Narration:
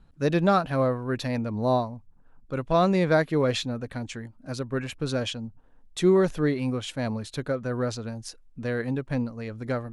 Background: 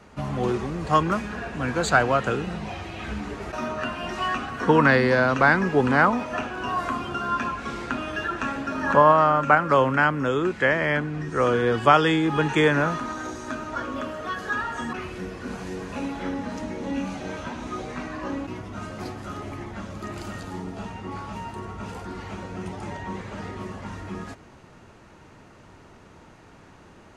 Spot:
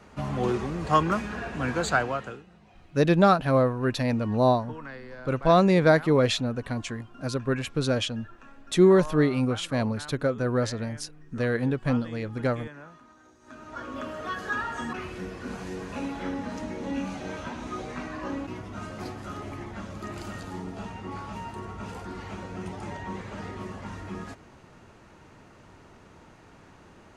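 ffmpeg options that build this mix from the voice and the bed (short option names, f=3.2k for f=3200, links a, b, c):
-filter_complex "[0:a]adelay=2750,volume=2.5dB[a];[1:a]volume=19.5dB,afade=t=out:st=1.69:d=0.75:silence=0.0794328,afade=t=in:st=13.4:d=0.79:silence=0.0891251[b];[a][b]amix=inputs=2:normalize=0"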